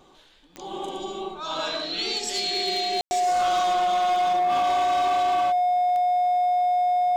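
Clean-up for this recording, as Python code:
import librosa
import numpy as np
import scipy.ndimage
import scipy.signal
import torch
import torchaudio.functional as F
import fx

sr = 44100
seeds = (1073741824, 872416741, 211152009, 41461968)

y = fx.fix_declip(x, sr, threshold_db=-19.0)
y = fx.fix_declick_ar(y, sr, threshold=10.0)
y = fx.notch(y, sr, hz=720.0, q=30.0)
y = fx.fix_ambience(y, sr, seeds[0], print_start_s=0.03, print_end_s=0.53, start_s=3.01, end_s=3.11)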